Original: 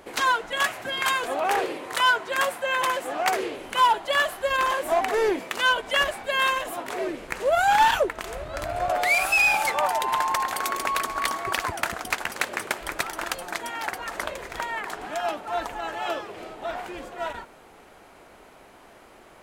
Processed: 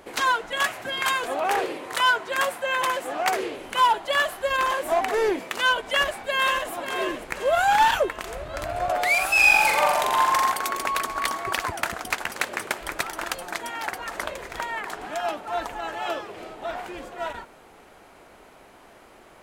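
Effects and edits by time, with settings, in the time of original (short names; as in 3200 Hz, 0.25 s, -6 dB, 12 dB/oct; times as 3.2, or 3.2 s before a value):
5.9–6.69 echo throw 0.54 s, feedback 50%, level -9 dB
9.31–10.52 flutter echo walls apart 7.4 m, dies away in 0.93 s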